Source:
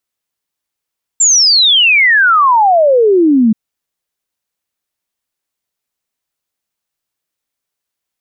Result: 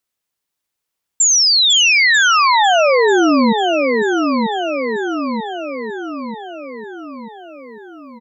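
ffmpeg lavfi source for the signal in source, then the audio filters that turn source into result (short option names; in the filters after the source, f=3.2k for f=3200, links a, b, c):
-f lavfi -i "aevalsrc='0.531*clip(min(t,2.33-t)/0.01,0,1)*sin(2*PI*7500*2.33/log(210/7500)*(exp(log(210/7500)*t/2.33)-1))':d=2.33:s=44100"
-filter_complex "[0:a]asplit=2[a][b];[b]adelay=939,lowpass=f=4.8k:p=1,volume=-7.5dB,asplit=2[c][d];[d]adelay=939,lowpass=f=4.8k:p=1,volume=0.54,asplit=2[e][f];[f]adelay=939,lowpass=f=4.8k:p=1,volume=0.54,asplit=2[g][h];[h]adelay=939,lowpass=f=4.8k:p=1,volume=0.54,asplit=2[i][j];[j]adelay=939,lowpass=f=4.8k:p=1,volume=0.54,asplit=2[k][l];[l]adelay=939,lowpass=f=4.8k:p=1,volume=0.54,asplit=2[m][n];[n]adelay=939,lowpass=f=4.8k:p=1,volume=0.54[o];[c][e][g][i][k][m][o]amix=inputs=7:normalize=0[p];[a][p]amix=inputs=2:normalize=0,acompressor=threshold=-14dB:ratio=2,asplit=2[q][r];[r]aecho=0:1:498:0.355[s];[q][s]amix=inputs=2:normalize=0"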